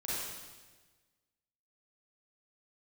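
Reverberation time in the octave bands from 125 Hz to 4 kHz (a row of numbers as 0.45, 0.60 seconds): 1.6, 1.5, 1.4, 1.3, 1.3, 1.3 seconds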